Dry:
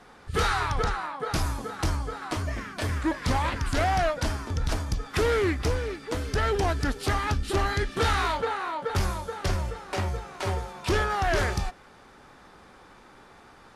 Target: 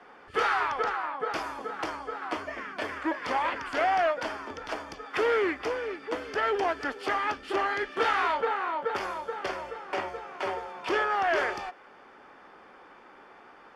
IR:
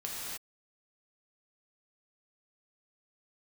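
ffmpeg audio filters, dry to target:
-filter_complex "[0:a]bandreject=frequency=3900:width=5.4,acrossover=split=290[link_01][link_02];[link_01]acompressor=threshold=-38dB:ratio=12[link_03];[link_03][link_02]amix=inputs=2:normalize=0,acrossover=split=250 4000:gain=0.126 1 0.126[link_04][link_05][link_06];[link_04][link_05][link_06]amix=inputs=3:normalize=0,volume=1dB"

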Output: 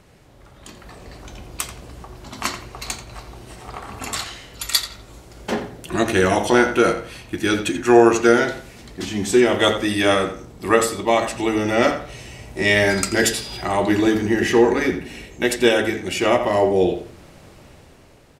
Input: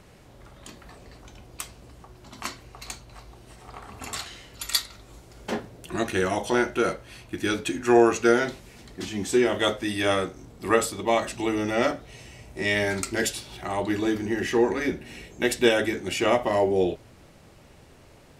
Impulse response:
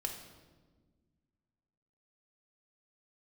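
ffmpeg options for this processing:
-filter_complex "[0:a]asettb=1/sr,asplit=3[link_01][link_02][link_03];[link_01]atrim=end=12.894[link_04];[link_02]atrim=start=12.89:end=13.62,asetpts=PTS-STARTPTS,afade=type=in:duration=0.004:curve=qsin,afade=type=out:start_time=0.726:duration=0.004:curve=qsin,aeval=exprs='val(0)+0.00891*sin(2*PI*4900*n/s)':channel_layout=same[link_05];[link_03]atrim=start=13.616[link_06];[link_04][link_05]acrossfade=duration=0.004:curve1=hsin:curve2=qsin[link_07];[link_07][link_06]acrossfade=duration=0.004:curve1=qsin:curve2=hsin,dynaudnorm=framelen=260:gausssize=7:maxgain=9dB,asplit=2[link_08][link_09];[link_09]adelay=86,lowpass=frequency=3700:poles=1,volume=-9.5dB,asplit=2[link_10][link_11];[link_11]adelay=86,lowpass=frequency=3700:poles=1,volume=0.29,asplit=2[link_12][link_13];[link_13]adelay=86,lowpass=frequency=3700:poles=1,volume=0.29[link_14];[link_08][link_10][link_12][link_14]amix=inputs=4:normalize=0"

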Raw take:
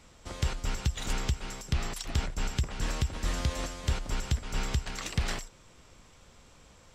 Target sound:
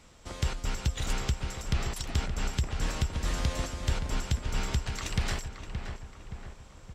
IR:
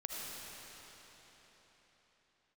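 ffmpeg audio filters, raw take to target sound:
-filter_complex "[0:a]asplit=2[link_01][link_02];[link_02]adelay=572,lowpass=frequency=2100:poles=1,volume=-7dB,asplit=2[link_03][link_04];[link_04]adelay=572,lowpass=frequency=2100:poles=1,volume=0.55,asplit=2[link_05][link_06];[link_06]adelay=572,lowpass=frequency=2100:poles=1,volume=0.55,asplit=2[link_07][link_08];[link_08]adelay=572,lowpass=frequency=2100:poles=1,volume=0.55,asplit=2[link_09][link_10];[link_10]adelay=572,lowpass=frequency=2100:poles=1,volume=0.55,asplit=2[link_11][link_12];[link_12]adelay=572,lowpass=frequency=2100:poles=1,volume=0.55,asplit=2[link_13][link_14];[link_14]adelay=572,lowpass=frequency=2100:poles=1,volume=0.55[link_15];[link_01][link_03][link_05][link_07][link_09][link_11][link_13][link_15]amix=inputs=8:normalize=0"

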